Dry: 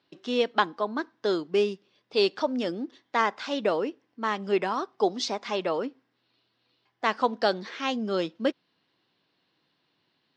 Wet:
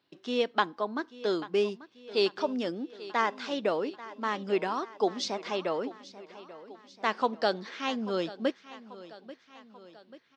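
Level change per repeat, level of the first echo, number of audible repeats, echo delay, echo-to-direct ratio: -5.0 dB, -17.0 dB, 4, 838 ms, -15.5 dB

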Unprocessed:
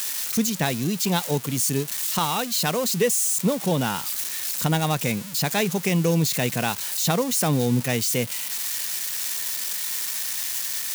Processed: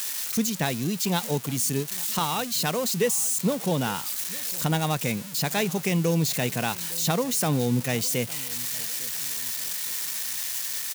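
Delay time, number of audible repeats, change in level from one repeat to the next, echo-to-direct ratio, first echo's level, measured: 856 ms, 2, -7.5 dB, -20.5 dB, -21.5 dB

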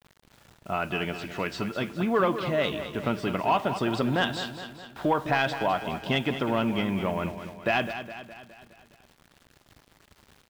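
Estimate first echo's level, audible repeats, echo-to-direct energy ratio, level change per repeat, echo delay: -10.5 dB, 5, -9.0 dB, -5.5 dB, 207 ms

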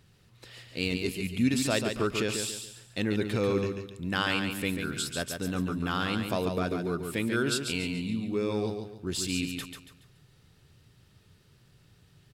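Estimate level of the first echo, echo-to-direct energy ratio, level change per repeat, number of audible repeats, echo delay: -6.0 dB, -5.5 dB, -9.5 dB, 4, 141 ms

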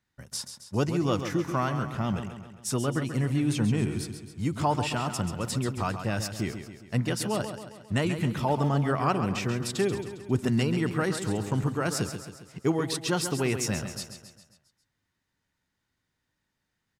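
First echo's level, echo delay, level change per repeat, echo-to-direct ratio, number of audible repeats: -9.0 dB, 135 ms, -5.5 dB, -7.5 dB, 5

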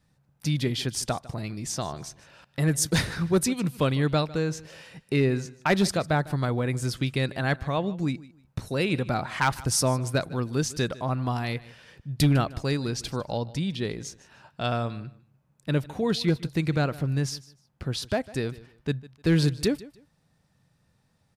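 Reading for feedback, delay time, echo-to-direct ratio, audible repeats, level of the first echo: 23%, 152 ms, -19.5 dB, 2, -19.5 dB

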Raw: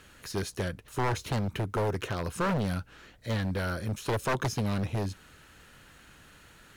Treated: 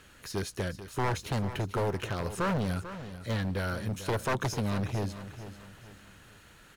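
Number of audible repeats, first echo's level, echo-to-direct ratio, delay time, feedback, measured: 3, -12.5 dB, -12.0 dB, 443 ms, 38%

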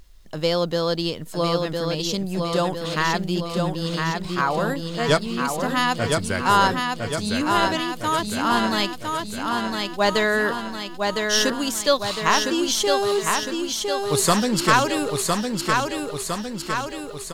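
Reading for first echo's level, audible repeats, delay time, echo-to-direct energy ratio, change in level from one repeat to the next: -4.0 dB, 7, 1008 ms, -2.0 dB, -4.5 dB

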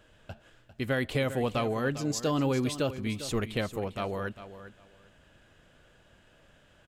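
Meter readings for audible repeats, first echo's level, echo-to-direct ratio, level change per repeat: 2, -13.0 dB, -13.0 dB, -14.5 dB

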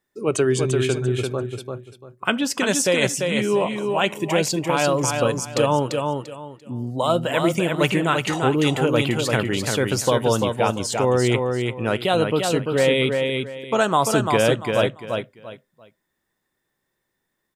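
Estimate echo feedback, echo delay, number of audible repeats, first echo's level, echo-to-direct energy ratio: 25%, 343 ms, 3, -4.5 dB, -4.0 dB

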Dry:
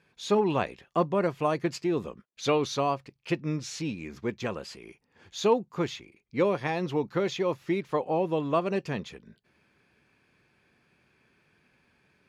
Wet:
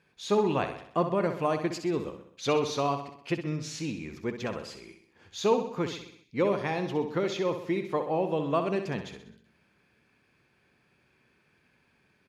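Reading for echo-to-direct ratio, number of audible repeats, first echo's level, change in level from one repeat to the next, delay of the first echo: -7.5 dB, 5, -9.0 dB, -5.5 dB, 64 ms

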